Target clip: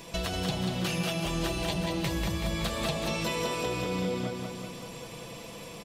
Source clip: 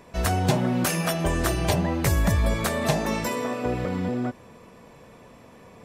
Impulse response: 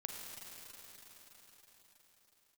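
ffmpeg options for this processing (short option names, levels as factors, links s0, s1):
-filter_complex "[0:a]acrossover=split=4000[s0][s1];[s1]acompressor=threshold=0.00501:ratio=4:attack=1:release=60[s2];[s0][s2]amix=inputs=2:normalize=0,highshelf=f=2400:t=q:w=1.5:g=9,aecho=1:1:6:0.51,acompressor=threshold=0.0251:ratio=6,asplit=2[s3][s4];[s4]aecho=0:1:189|378|567|756|945|1134|1323|1512|1701:0.596|0.357|0.214|0.129|0.0772|0.0463|0.0278|0.0167|0.01[s5];[s3][s5]amix=inputs=2:normalize=0,volume=1.26"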